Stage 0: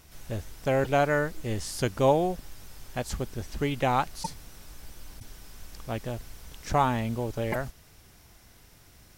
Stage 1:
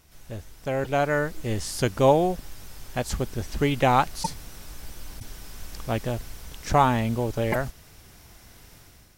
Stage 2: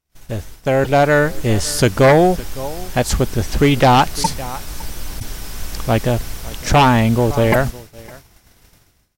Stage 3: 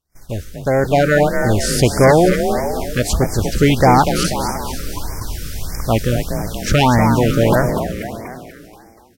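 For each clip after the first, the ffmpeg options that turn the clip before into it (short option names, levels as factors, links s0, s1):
-af "dynaudnorm=f=730:g=3:m=3.16,volume=0.668"
-af "aecho=1:1:559:0.0891,agate=range=0.0224:threshold=0.0112:ratio=3:detection=peak,aeval=exprs='0.531*sin(PI/2*2.51*val(0)/0.531)':c=same"
-filter_complex "[0:a]asplit=2[s0][s1];[s1]asplit=6[s2][s3][s4][s5][s6][s7];[s2]adelay=242,afreqshift=38,volume=0.447[s8];[s3]adelay=484,afreqshift=76,volume=0.232[s9];[s4]adelay=726,afreqshift=114,volume=0.12[s10];[s5]adelay=968,afreqshift=152,volume=0.0631[s11];[s6]adelay=1210,afreqshift=190,volume=0.0327[s12];[s7]adelay=1452,afreqshift=228,volume=0.017[s13];[s8][s9][s10][s11][s12][s13]amix=inputs=6:normalize=0[s14];[s0][s14]amix=inputs=2:normalize=0,afftfilt=real='re*(1-between(b*sr/1024,820*pow(3500/820,0.5+0.5*sin(2*PI*1.6*pts/sr))/1.41,820*pow(3500/820,0.5+0.5*sin(2*PI*1.6*pts/sr))*1.41))':imag='im*(1-between(b*sr/1024,820*pow(3500/820,0.5+0.5*sin(2*PI*1.6*pts/sr))/1.41,820*pow(3500/820,0.5+0.5*sin(2*PI*1.6*pts/sr))*1.41))':win_size=1024:overlap=0.75"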